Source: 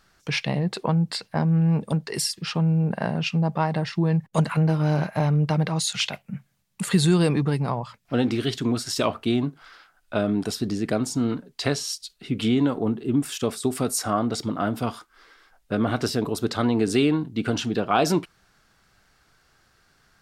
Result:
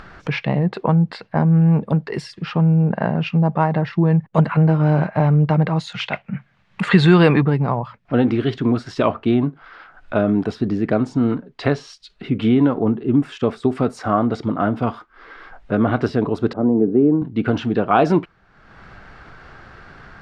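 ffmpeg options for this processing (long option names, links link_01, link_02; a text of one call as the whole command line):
ffmpeg -i in.wav -filter_complex "[0:a]asettb=1/sr,asplit=3[link_01][link_02][link_03];[link_01]atrim=end=6.114[link_04];[link_02]atrim=start=6.11:end=7.44,asetpts=PTS-STARTPTS,afade=type=in:duration=0.004:curve=qsin,afade=type=out:start_time=1.326:duration=0.004:curve=qsin,equalizer=frequency=2400:width=0.34:gain=10[link_05];[link_03]atrim=start=7.436[link_06];[link_04][link_05]acrossfade=duration=0.004:curve1=hsin:curve2=qsin[link_07];[link_07][link_06]acrossfade=duration=0.004:curve1=qsin:curve2=hsin,asettb=1/sr,asplit=3[link_08][link_09][link_10];[link_08]atrim=end=16.534[link_11];[link_09]atrim=start=16.53:end=17.22,asetpts=PTS-STARTPTS,afade=type=in:duration=0.004:curve=qsin,afade=type=out:start_time=0.686:duration=0.004:curve=qsin,asuperpass=centerf=300:order=4:qfactor=0.63[link_12];[link_10]atrim=start=17.216[link_13];[link_11][link_12]acrossfade=duration=0.004:curve1=hsin:curve2=qsin[link_14];[link_14][link_13]acrossfade=duration=0.004:curve1=qsin:curve2=hsin,lowpass=2000,acompressor=mode=upward:threshold=-33dB:ratio=2.5,volume=6dB" out.wav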